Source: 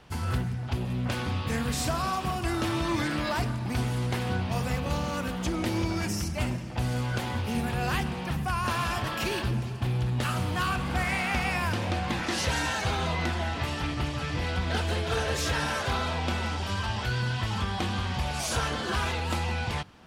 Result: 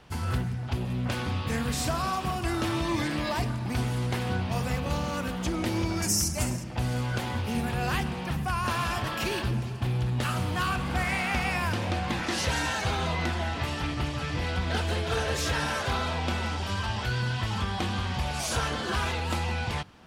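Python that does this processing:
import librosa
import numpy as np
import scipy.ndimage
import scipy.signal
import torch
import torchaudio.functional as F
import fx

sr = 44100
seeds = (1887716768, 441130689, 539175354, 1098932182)

y = fx.notch(x, sr, hz=1400.0, q=5.3, at=(2.8, 3.5))
y = fx.high_shelf_res(y, sr, hz=4800.0, db=10.5, q=1.5, at=(6.02, 6.64))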